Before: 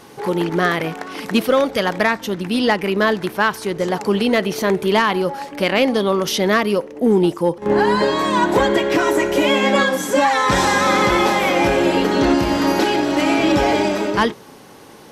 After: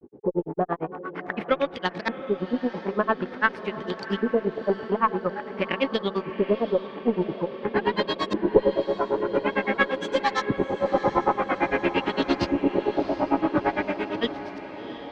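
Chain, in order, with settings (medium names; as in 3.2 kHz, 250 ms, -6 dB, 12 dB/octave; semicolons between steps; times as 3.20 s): granulator 86 ms, grains 8.8 per s, spray 20 ms, pitch spread up and down by 0 st; LFO low-pass saw up 0.48 Hz 340–5100 Hz; on a send: echo that smears into a reverb 728 ms, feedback 62%, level -12 dB; on the sum: Chebyshev shaper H 2 -16 dB, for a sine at 0 dBFS; trim -5 dB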